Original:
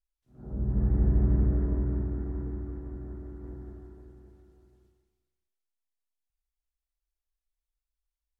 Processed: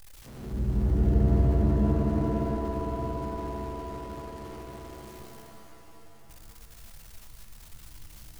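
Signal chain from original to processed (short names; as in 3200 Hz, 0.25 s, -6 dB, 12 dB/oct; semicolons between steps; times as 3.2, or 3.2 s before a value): zero-crossing step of -41 dBFS; shimmer reverb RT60 3.5 s, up +7 st, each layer -2 dB, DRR 4.5 dB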